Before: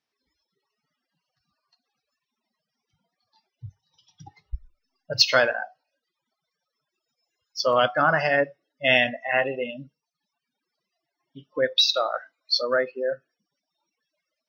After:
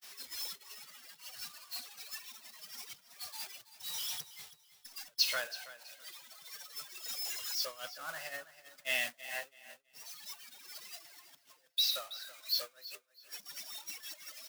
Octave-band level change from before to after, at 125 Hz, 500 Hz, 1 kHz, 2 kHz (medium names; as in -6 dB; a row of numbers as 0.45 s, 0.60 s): under -25 dB, -25.0 dB, -21.5 dB, -15.5 dB